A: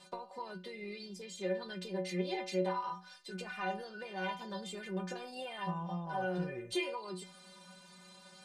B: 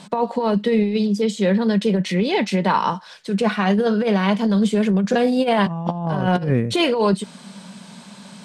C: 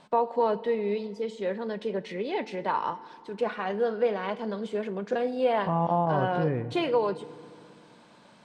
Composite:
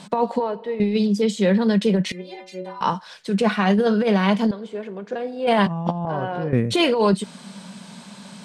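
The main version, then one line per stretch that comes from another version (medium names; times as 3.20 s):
B
0.40–0.80 s: from C
2.12–2.81 s: from A
4.51–5.47 s: from C
6.05–6.53 s: from C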